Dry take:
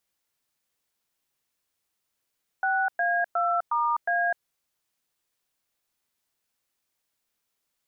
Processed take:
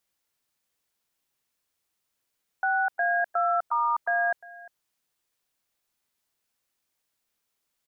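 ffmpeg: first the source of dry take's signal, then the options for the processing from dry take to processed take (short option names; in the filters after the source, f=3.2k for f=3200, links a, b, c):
-f lavfi -i "aevalsrc='0.0596*clip(min(mod(t,0.361),0.253-mod(t,0.361))/0.002,0,1)*(eq(floor(t/0.361),0)*(sin(2*PI*770*mod(t,0.361))+sin(2*PI*1477*mod(t,0.361)))+eq(floor(t/0.361),1)*(sin(2*PI*697*mod(t,0.361))+sin(2*PI*1633*mod(t,0.361)))+eq(floor(t/0.361),2)*(sin(2*PI*697*mod(t,0.361))+sin(2*PI*1336*mod(t,0.361)))+eq(floor(t/0.361),3)*(sin(2*PI*941*mod(t,0.361))+sin(2*PI*1209*mod(t,0.361)))+eq(floor(t/0.361),4)*(sin(2*PI*697*mod(t,0.361))+sin(2*PI*1633*mod(t,0.361))))':d=1.805:s=44100"
-af "aecho=1:1:351:0.0944"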